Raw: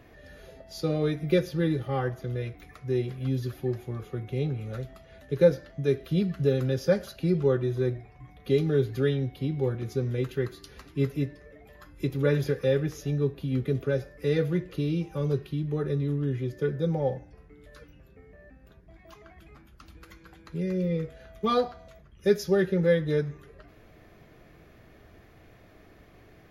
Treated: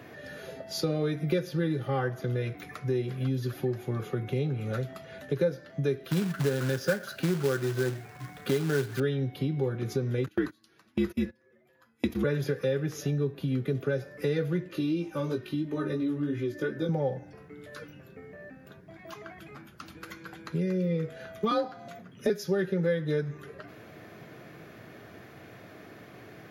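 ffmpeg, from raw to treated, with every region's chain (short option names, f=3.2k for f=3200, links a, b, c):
-filter_complex "[0:a]asettb=1/sr,asplit=3[a][b][c];[a]atrim=end=6.104[d];[b]atrim=start=6.1:end=9,asetpts=PTS-STARTPTS,afade=t=in:d=0.004:c=qsin,afade=t=out:st=2.896:d=0.004:c=qsin,equalizer=f=1.5k:t=o:w=0.52:g=10,acrusher=bits=3:mode=log:mix=0:aa=0.000001[e];[c]atrim=start=8.996[f];[d][e]acrossfade=d=0.004:c1=hsin:c2=qsin[g];[g][f]acrossfade=d=0.004:c1=qsin:c2=hsin,asettb=1/sr,asplit=3[h][i][j];[h]atrim=end=10.264[k];[i]atrim=start=10.26:end=12.24,asetpts=PTS-STARTPTS,afade=t=in:d=0.004:c=qsin,afade=t=out:st=1.976:d=0.004:c=qsin,acontrast=23,afreqshift=-67,agate=range=-24dB:threshold=-33dB:ratio=16:release=100:detection=peak[l];[j]atrim=start=12.236[m];[k][l]acrossfade=d=0.004:c1=hsin:c2=qsin[n];[n][m]acrossfade=d=0.004:c1=qsin:c2=hsin,asettb=1/sr,asplit=3[o][p][q];[o]atrim=end=14.684[r];[p]atrim=start=14.68:end=16.89,asetpts=PTS-STARTPTS,afade=t=in:d=0.004:c=qsin,afade=t=out:st=2.206:d=0.004:c=qsin,aecho=1:1:3.3:0.63,atrim=end_sample=97461,flanger=delay=17.5:depth=2.4:speed=2.9[s];[q]atrim=start=16.886[t];[r][s]acrossfade=d=0.004:c1=hsin:c2=qsin[u];[u][t]acrossfade=d=0.004:c1=qsin:c2=hsin,asettb=1/sr,asplit=3[v][w][x];[v]atrim=end=21.514[y];[w]atrim=start=21.51:end=22.3,asetpts=PTS-STARTPTS,afade=t=in:d=0.004:c=qsin,afade=t=out:st=0.786:d=0.004:c=qsin,highpass=150,lowshelf=f=210:g=8.5,afreqshift=39[z];[x]atrim=start=22.296[aa];[y][z]acrossfade=d=0.004:c1=hsin:c2=qsin[ab];[ab][aa]acrossfade=d=0.004:c1=qsin:c2=hsin,highpass=f=110:w=0.5412,highpass=f=110:w=1.3066,equalizer=f=1.5k:t=o:w=0.27:g=4,acompressor=threshold=-35dB:ratio=3,volume=7dB"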